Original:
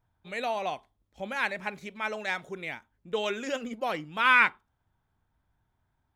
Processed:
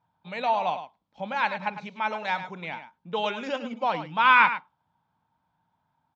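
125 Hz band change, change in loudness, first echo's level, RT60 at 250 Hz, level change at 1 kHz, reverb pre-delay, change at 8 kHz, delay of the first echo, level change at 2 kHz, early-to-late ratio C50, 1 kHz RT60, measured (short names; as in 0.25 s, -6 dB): +4.5 dB, +3.5 dB, -11.0 dB, none, +7.0 dB, none, n/a, 0.105 s, +1.0 dB, none, none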